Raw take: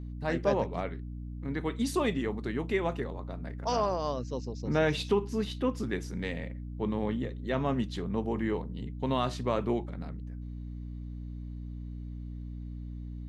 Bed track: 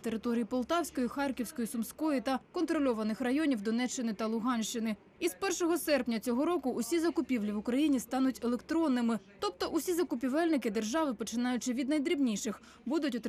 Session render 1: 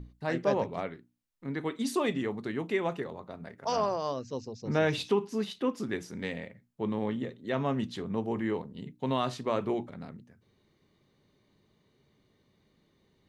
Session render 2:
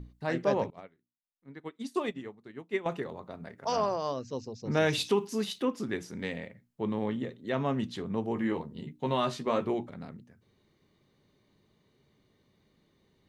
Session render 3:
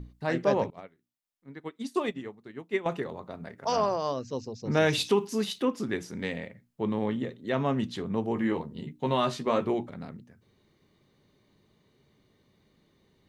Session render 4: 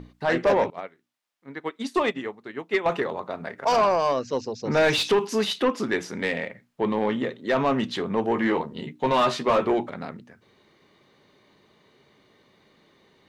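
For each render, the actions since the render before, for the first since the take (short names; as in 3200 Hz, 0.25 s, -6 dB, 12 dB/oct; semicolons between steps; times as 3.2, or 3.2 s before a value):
notches 60/120/180/240/300 Hz
0.7–2.86 upward expander 2.5:1, over -40 dBFS; 4.77–5.65 high shelf 4800 Hz +11 dB; 8.35–9.67 doubler 13 ms -5 dB
gain +2.5 dB
overdrive pedal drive 19 dB, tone 2700 Hz, clips at -10.5 dBFS; hard clip -13.5 dBFS, distortion -35 dB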